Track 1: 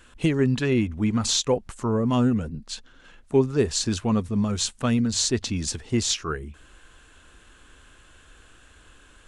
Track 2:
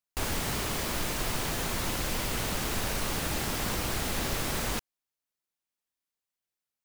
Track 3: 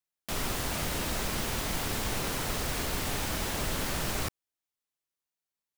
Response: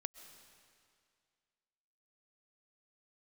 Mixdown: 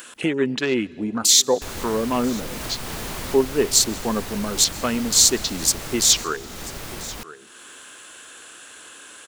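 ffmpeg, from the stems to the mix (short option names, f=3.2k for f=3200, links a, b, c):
-filter_complex "[0:a]highpass=310,afwtdn=0.0158,aemphasis=mode=production:type=50kf,volume=1.5dB,asplit=3[a][b][c];[b]volume=-8dB[d];[c]volume=-22.5dB[e];[1:a]adelay=1450,volume=-3dB,asplit=2[f][g];[g]volume=-7.5dB[h];[3:a]atrim=start_sample=2205[i];[d][i]afir=irnorm=-1:irlink=0[j];[e][h]amix=inputs=2:normalize=0,aecho=0:1:989:1[k];[a][f][j][k]amix=inputs=4:normalize=0,acompressor=mode=upward:threshold=-24dB:ratio=2.5"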